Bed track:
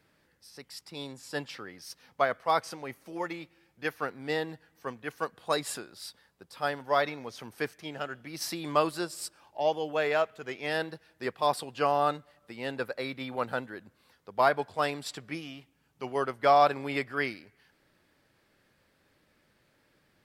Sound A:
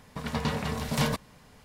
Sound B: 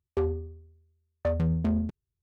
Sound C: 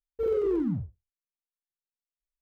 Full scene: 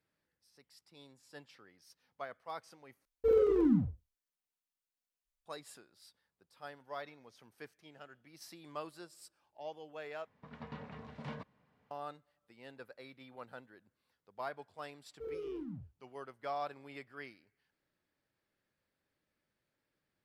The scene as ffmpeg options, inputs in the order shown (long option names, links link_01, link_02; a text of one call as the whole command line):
ffmpeg -i bed.wav -i cue0.wav -i cue1.wav -i cue2.wav -filter_complex "[3:a]asplit=2[link_01][link_02];[0:a]volume=-17.5dB[link_03];[link_01]aecho=1:1:4:0.36[link_04];[1:a]highpass=100,lowpass=2400[link_05];[link_03]asplit=3[link_06][link_07][link_08];[link_06]atrim=end=3.054[link_09];[link_04]atrim=end=2.41,asetpts=PTS-STARTPTS,volume=-0.5dB[link_10];[link_07]atrim=start=5.456:end=10.274[link_11];[link_05]atrim=end=1.64,asetpts=PTS-STARTPTS,volume=-16.5dB[link_12];[link_08]atrim=start=11.906[link_13];[link_02]atrim=end=2.41,asetpts=PTS-STARTPTS,volume=-15.5dB,afade=type=in:duration=0.004:curve=hsin,afade=type=out:start_time=2.406:duration=0.004:curve=hsin,adelay=15010[link_14];[link_09][link_10]acrossfade=duration=0.004:curve1=hsin:curve2=hsin[link_15];[link_15][link_11]acrossfade=duration=0.004:curve1=hsin:curve2=hsin[link_16];[link_16][link_12]acrossfade=duration=0.004:curve1=hsin:curve2=hsin[link_17];[link_17][link_13]acrossfade=duration=0.004:curve1=hsin:curve2=hsin[link_18];[link_18][link_14]amix=inputs=2:normalize=0" out.wav